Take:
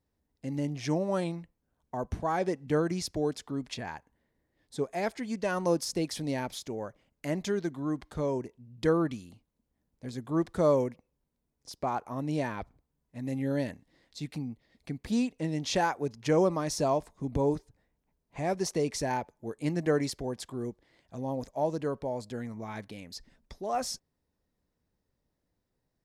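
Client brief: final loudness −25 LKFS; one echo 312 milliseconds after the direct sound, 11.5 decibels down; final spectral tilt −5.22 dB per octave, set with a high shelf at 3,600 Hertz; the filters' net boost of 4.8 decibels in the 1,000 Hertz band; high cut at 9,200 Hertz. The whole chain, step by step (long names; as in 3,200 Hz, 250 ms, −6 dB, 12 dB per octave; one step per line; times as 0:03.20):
low-pass filter 9,200 Hz
parametric band 1,000 Hz +6 dB
high-shelf EQ 3,600 Hz +3.5 dB
single-tap delay 312 ms −11.5 dB
level +5.5 dB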